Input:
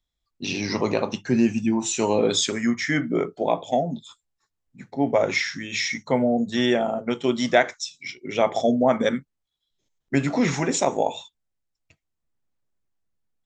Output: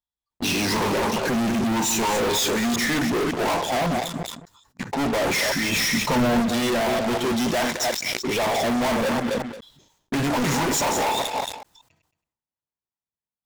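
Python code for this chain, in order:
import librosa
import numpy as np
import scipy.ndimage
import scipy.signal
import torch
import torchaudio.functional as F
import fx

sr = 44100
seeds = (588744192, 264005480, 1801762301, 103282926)

y = fx.reverse_delay(x, sr, ms=184, wet_db=-11.5)
y = fx.highpass(y, sr, hz=65.0, slope=6)
y = fx.peak_eq(y, sr, hz=920.0, db=9.5, octaves=0.48)
y = fx.notch(y, sr, hz=2200.0, q=14.0)
y = fx.leveller(y, sr, passes=5)
y = np.clip(y, -10.0 ** (-18.0 / 20.0), 10.0 ** (-18.0 / 20.0))
y = fx.low_shelf(y, sr, hz=290.0, db=7.0, at=(5.69, 6.4))
y = y + 10.0 ** (-15.5 / 20.0) * np.pad(y, (int(223 * sr / 1000.0), 0))[:len(y)]
y = fx.sustainer(y, sr, db_per_s=74.0)
y = F.gain(torch.from_numpy(y), -3.5).numpy()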